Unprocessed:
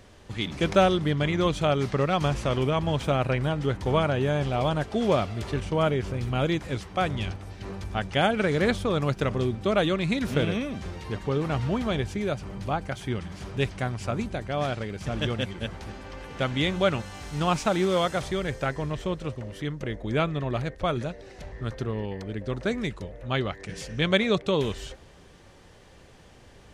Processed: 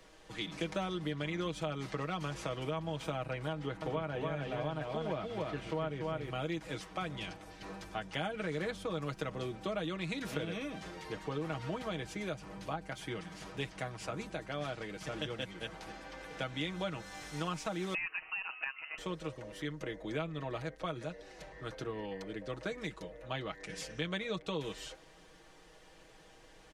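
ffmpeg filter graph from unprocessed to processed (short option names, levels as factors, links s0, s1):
-filter_complex "[0:a]asettb=1/sr,asplit=3[s0][s1][s2];[s0]atrim=end=3.534[s3];[s1]atrim=start=3.53:end=6.3,asetpts=PTS-STARTPTS,afade=t=in:d=0.004:c=qsin,afade=t=out:st=2.766:d=0.004:c=qsin,acrossover=split=4000[s4][s5];[s5]acompressor=threshold=0.00141:ratio=4:attack=1:release=60[s6];[s4][s6]amix=inputs=2:normalize=0,aecho=1:1:288:0.631,atrim=end_sample=122157[s7];[s2]atrim=start=6.296[s8];[s3][s7]acrossfade=d=0.004:c1=hsin:c2=qsin[s9];[s9][s8]acrossfade=d=0.004:c1=qsin:c2=hsin,asettb=1/sr,asplit=3[s10][s11][s12];[s10]atrim=end=17.944[s13];[s11]atrim=start=17.94:end=18.98,asetpts=PTS-STARTPTS,afade=t=in:d=0.004:c=qsin,afade=t=out:st=1.036:d=0.004:c=qsin,highpass=370,lowpass=f=2600:t=q:w=0.5098,lowpass=f=2600:t=q:w=0.6013,lowpass=f=2600:t=q:w=0.9,lowpass=f=2600:t=q:w=2.563,afreqshift=-3100[s14];[s12]atrim=start=18.976[s15];[s13][s14]acrossfade=d=0.004:c1=hsin:c2=qsin[s16];[s16][s15]acrossfade=d=0.004:c1=qsin:c2=hsin,equalizer=f=110:w=0.71:g=-11,aecho=1:1:6.3:0.7,acrossover=split=83|230[s17][s18][s19];[s17]acompressor=threshold=0.002:ratio=4[s20];[s18]acompressor=threshold=0.0178:ratio=4[s21];[s19]acompressor=threshold=0.0282:ratio=4[s22];[s20][s21][s22]amix=inputs=3:normalize=0,volume=0.531"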